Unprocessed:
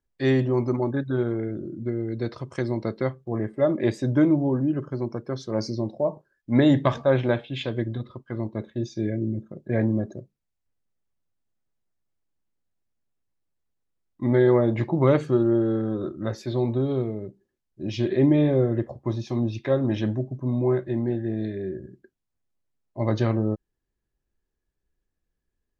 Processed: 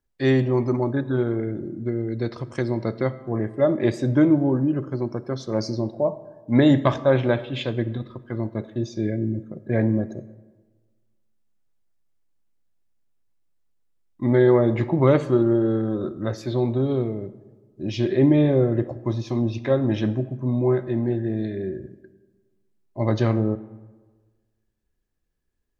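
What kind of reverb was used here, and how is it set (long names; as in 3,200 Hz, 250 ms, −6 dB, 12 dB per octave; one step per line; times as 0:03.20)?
comb and all-pass reverb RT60 1.4 s, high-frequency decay 0.5×, pre-delay 25 ms, DRR 16 dB
level +2 dB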